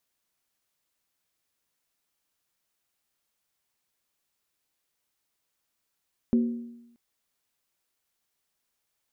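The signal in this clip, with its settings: skin hit, lowest mode 236 Hz, decay 0.91 s, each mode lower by 11.5 dB, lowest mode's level -17 dB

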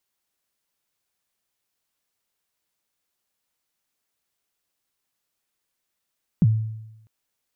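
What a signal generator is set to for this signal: kick drum length 0.65 s, from 210 Hz, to 110 Hz, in 38 ms, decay 0.93 s, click off, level -11 dB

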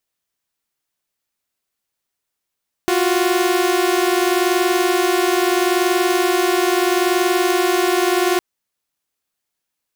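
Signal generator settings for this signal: chord F4/F#4 saw, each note -15 dBFS 5.51 s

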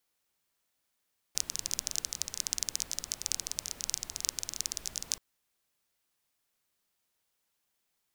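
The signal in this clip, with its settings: rain from filtered ticks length 3.83 s, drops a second 19, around 6000 Hz, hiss -14 dB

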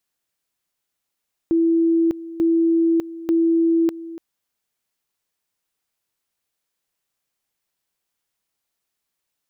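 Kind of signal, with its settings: two-level tone 331 Hz -14 dBFS, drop 16.5 dB, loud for 0.60 s, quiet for 0.29 s, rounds 3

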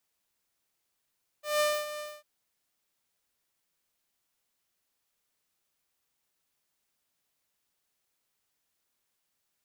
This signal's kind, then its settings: ADSR saw 599 Hz, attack 0.172 s, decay 0.25 s, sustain -13 dB, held 0.57 s, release 0.229 s -20.5 dBFS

